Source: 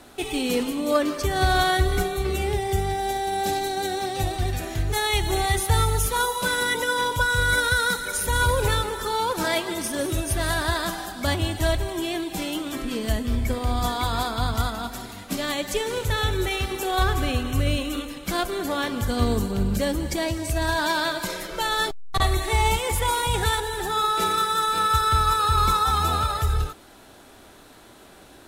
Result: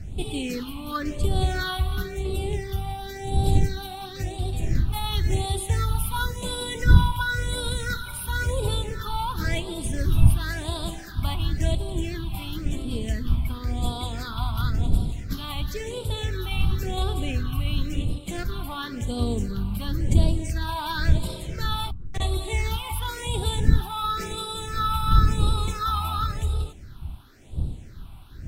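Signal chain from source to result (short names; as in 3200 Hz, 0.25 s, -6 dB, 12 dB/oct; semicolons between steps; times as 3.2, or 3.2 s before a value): wind noise 87 Hz -23 dBFS; phaser stages 6, 0.95 Hz, lowest notch 460–1800 Hz; gain -3.5 dB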